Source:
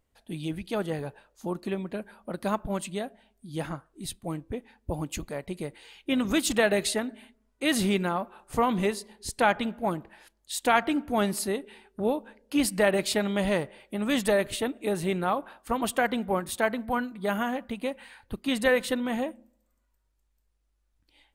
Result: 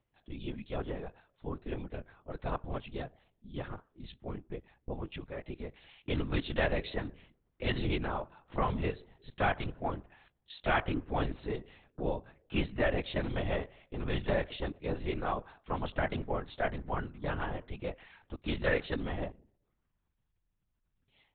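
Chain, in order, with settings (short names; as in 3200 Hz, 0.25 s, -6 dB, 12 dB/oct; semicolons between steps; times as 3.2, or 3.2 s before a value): LPC vocoder at 8 kHz whisper; gain -6.5 dB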